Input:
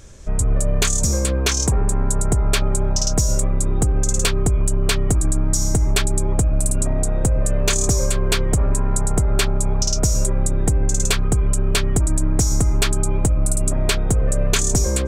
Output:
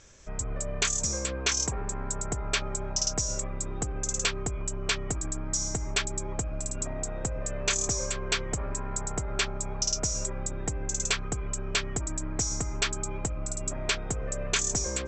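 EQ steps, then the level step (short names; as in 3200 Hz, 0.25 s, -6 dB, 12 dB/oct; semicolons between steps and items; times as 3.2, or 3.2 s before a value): rippled Chebyshev low-pass 7800 Hz, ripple 3 dB; low shelf 140 Hz -3.5 dB; low shelf 490 Hz -6.5 dB; -4.0 dB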